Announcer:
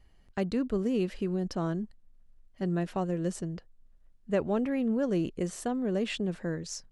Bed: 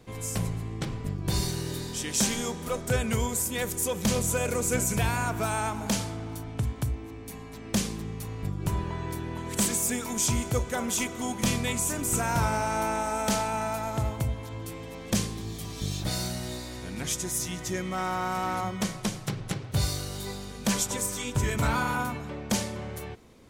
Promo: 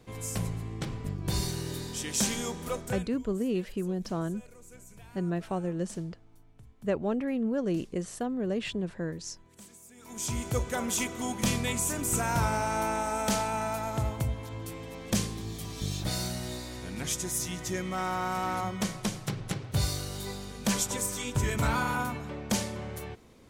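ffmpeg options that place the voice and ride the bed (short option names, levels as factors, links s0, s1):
-filter_complex "[0:a]adelay=2550,volume=0.891[s0];[1:a]volume=11.9,afade=t=out:st=2.73:d=0.37:silence=0.0707946,afade=t=in:st=9.95:d=0.67:silence=0.0630957[s1];[s0][s1]amix=inputs=2:normalize=0"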